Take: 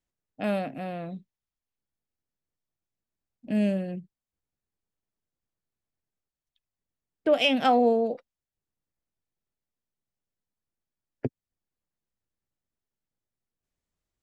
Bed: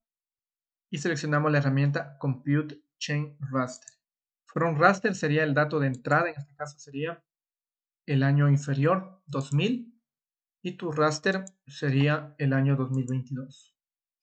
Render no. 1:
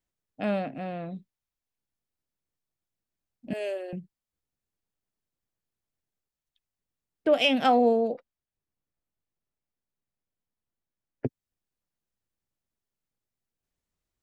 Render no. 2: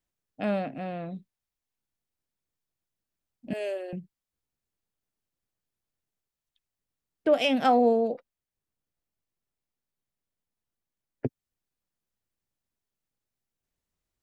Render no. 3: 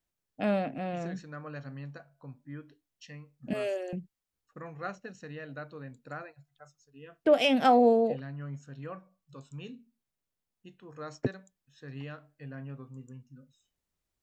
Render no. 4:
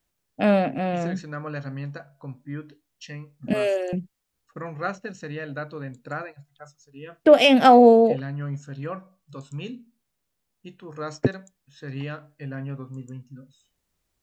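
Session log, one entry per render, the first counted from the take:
0:00.44–0:01.15: high-frequency loss of the air 82 metres; 0:03.53–0:03.93: Butterworth high-pass 310 Hz 72 dB per octave; 0:08.11–0:11.26: high-shelf EQ 4,000 Hz −11.5 dB
dynamic equaliser 2,900 Hz, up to −5 dB, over −41 dBFS, Q 1.9
mix in bed −18 dB
level +9 dB; brickwall limiter −3 dBFS, peak gain reduction 0.5 dB

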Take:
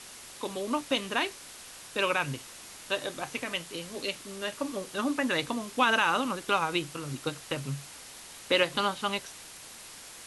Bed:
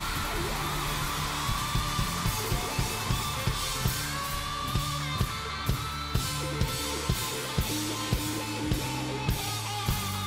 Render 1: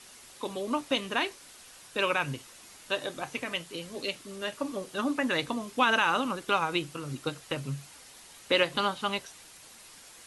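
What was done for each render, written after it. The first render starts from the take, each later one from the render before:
broadband denoise 6 dB, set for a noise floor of −47 dBFS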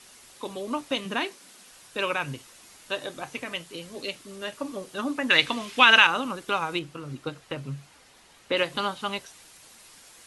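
0:01.05–0:01.69: low shelf with overshoot 130 Hz −11.5 dB, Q 3
0:05.30–0:06.07: parametric band 2,700 Hz +13.5 dB 2.1 octaves
0:06.79–0:08.57: high-shelf EQ 4,900 Hz −10.5 dB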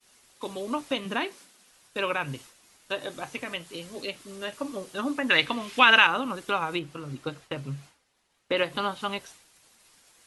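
downward expander −44 dBFS
dynamic equaliser 6,400 Hz, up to −7 dB, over −41 dBFS, Q 0.73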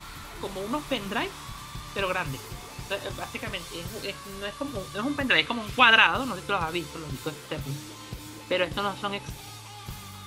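mix in bed −10.5 dB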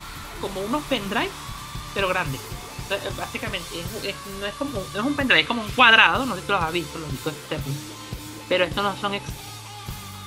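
level +5 dB
brickwall limiter −2 dBFS, peak gain reduction 3 dB

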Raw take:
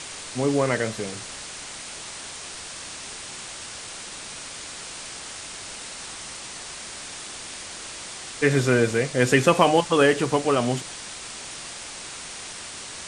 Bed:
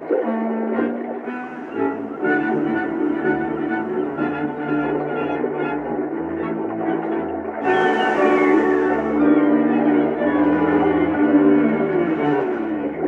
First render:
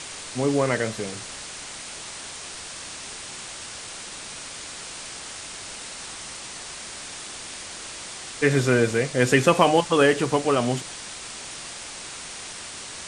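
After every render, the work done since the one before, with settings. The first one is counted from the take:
no processing that can be heard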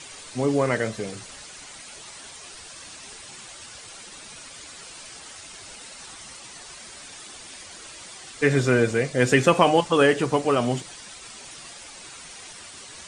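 broadband denoise 9 dB, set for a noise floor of −38 dBFS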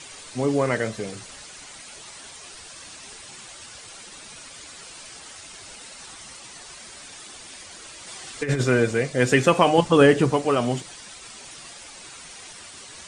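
0:08.07–0:08.64: compressor whose output falls as the input rises −22 dBFS, ratio −0.5
0:09.78–0:10.32: low-shelf EQ 350 Hz +9 dB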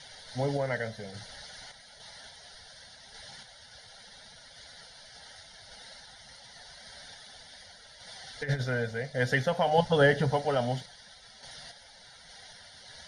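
phaser with its sweep stopped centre 1,700 Hz, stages 8
sample-and-hold tremolo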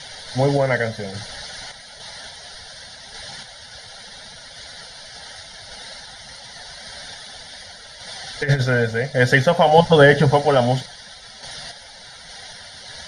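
level +12 dB
brickwall limiter −1 dBFS, peak gain reduction 2.5 dB

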